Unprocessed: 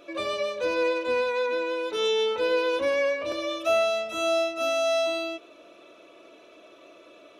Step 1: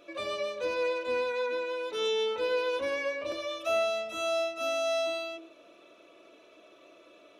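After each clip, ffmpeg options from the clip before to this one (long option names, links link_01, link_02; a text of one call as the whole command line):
ffmpeg -i in.wav -af "bandreject=frequency=46.83:width_type=h:width=4,bandreject=frequency=93.66:width_type=h:width=4,bandreject=frequency=140.49:width_type=h:width=4,bandreject=frequency=187.32:width_type=h:width=4,bandreject=frequency=234.15:width_type=h:width=4,bandreject=frequency=280.98:width_type=h:width=4,bandreject=frequency=327.81:width_type=h:width=4,bandreject=frequency=374.64:width_type=h:width=4,bandreject=frequency=421.47:width_type=h:width=4,bandreject=frequency=468.3:width_type=h:width=4,bandreject=frequency=515.13:width_type=h:width=4,bandreject=frequency=561.96:width_type=h:width=4,bandreject=frequency=608.79:width_type=h:width=4,bandreject=frequency=655.62:width_type=h:width=4,bandreject=frequency=702.45:width_type=h:width=4,bandreject=frequency=749.28:width_type=h:width=4,bandreject=frequency=796.11:width_type=h:width=4,bandreject=frequency=842.94:width_type=h:width=4,bandreject=frequency=889.77:width_type=h:width=4,bandreject=frequency=936.6:width_type=h:width=4,bandreject=frequency=983.43:width_type=h:width=4,bandreject=frequency=1030.26:width_type=h:width=4,bandreject=frequency=1077.09:width_type=h:width=4,bandreject=frequency=1123.92:width_type=h:width=4,bandreject=frequency=1170.75:width_type=h:width=4,bandreject=frequency=1217.58:width_type=h:width=4,bandreject=frequency=1264.41:width_type=h:width=4,bandreject=frequency=1311.24:width_type=h:width=4,bandreject=frequency=1358.07:width_type=h:width=4,bandreject=frequency=1404.9:width_type=h:width=4,bandreject=frequency=1451.73:width_type=h:width=4,bandreject=frequency=1498.56:width_type=h:width=4,bandreject=frequency=1545.39:width_type=h:width=4,bandreject=frequency=1592.22:width_type=h:width=4,bandreject=frequency=1639.05:width_type=h:width=4,volume=-4.5dB" out.wav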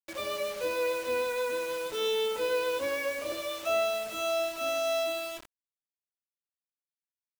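ffmpeg -i in.wav -af "acrusher=bits=6:mix=0:aa=0.000001" out.wav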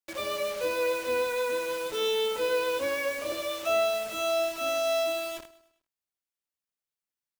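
ffmpeg -i in.wav -af "aecho=1:1:103|206|309|412:0.119|0.057|0.0274|0.0131,volume=2dB" out.wav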